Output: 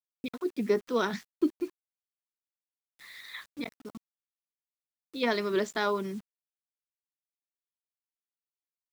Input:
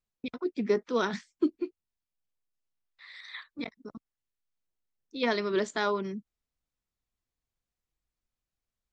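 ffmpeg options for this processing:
-af "acrusher=bits=8:mix=0:aa=0.000001"

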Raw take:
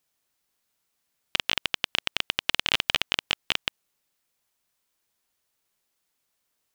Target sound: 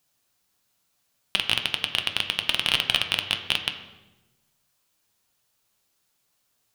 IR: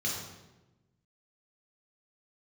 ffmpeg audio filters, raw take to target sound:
-filter_complex "[0:a]acontrast=82,asplit=2[a][b];[1:a]atrim=start_sample=2205,lowpass=4.6k[c];[b][c]afir=irnorm=-1:irlink=0,volume=-12dB[d];[a][d]amix=inputs=2:normalize=0,flanger=delay=6.6:depth=3.4:regen=76:speed=1.1:shape=sinusoidal,volume=2.5dB"

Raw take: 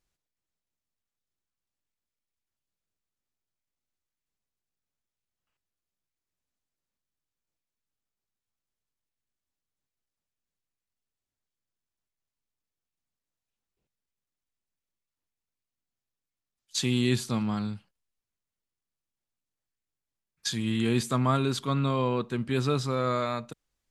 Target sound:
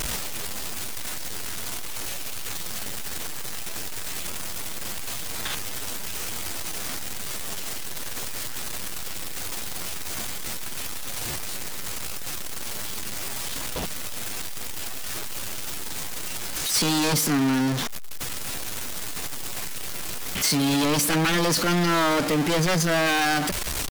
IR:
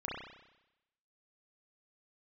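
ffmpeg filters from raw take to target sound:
-af "aeval=exprs='val(0)+0.5*0.0531*sgn(val(0))':c=same,lowshelf=f=330:g=-3.5,aeval=exprs='0.0668*(abs(mod(val(0)/0.0668+3,4)-2)-1)':c=same,asetrate=55563,aresample=44100,atempo=0.793701,volume=6dB"

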